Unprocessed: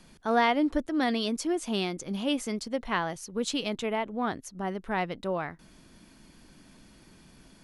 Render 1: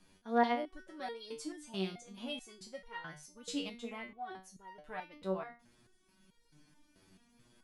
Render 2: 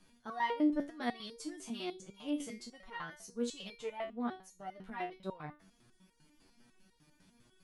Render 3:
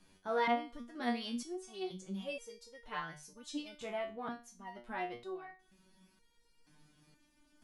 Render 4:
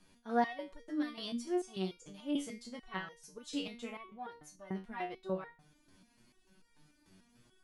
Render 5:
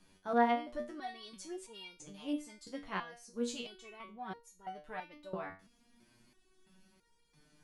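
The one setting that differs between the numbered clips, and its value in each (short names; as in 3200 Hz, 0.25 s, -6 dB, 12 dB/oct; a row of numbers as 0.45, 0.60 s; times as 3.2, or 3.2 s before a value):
stepped resonator, rate: 4.6, 10, 2.1, 6.8, 3 Hz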